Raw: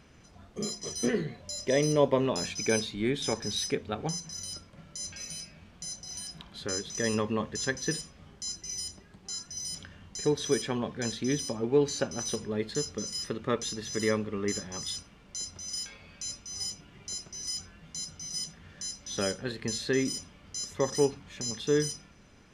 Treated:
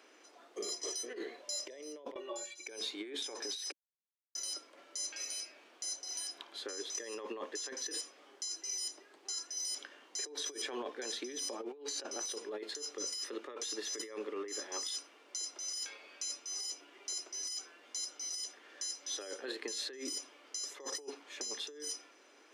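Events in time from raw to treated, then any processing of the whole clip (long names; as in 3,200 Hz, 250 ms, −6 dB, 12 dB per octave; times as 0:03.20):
0:02.14–0:02.67: stiff-string resonator 170 Hz, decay 0.26 s, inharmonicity 0.03
0:03.72–0:04.35: silence
whole clip: Butterworth high-pass 300 Hz 48 dB per octave; compressor whose output falls as the input rises −37 dBFS, ratio −1; level −4.5 dB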